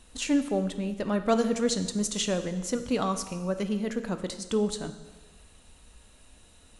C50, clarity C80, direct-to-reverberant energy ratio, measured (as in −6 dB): 10.5 dB, 12.5 dB, 9.0 dB